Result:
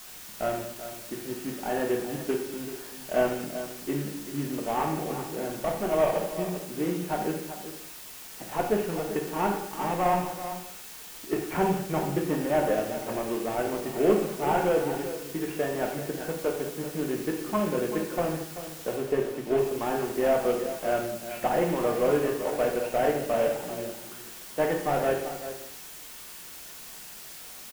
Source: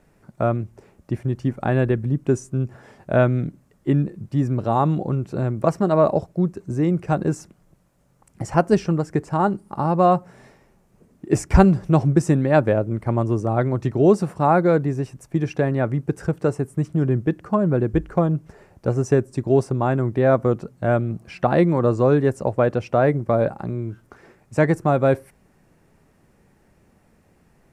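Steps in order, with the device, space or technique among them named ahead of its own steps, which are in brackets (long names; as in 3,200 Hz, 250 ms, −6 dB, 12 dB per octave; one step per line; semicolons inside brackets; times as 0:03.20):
army field radio (band-pass filter 320–3,300 Hz; variable-slope delta modulation 16 kbit/s; white noise bed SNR 15 dB)
0:18.96–0:19.58: high-shelf EQ 3,800 Hz −7.5 dB
single-tap delay 386 ms −11.5 dB
reverb whose tail is shaped and stops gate 260 ms falling, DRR 0 dB
level −6 dB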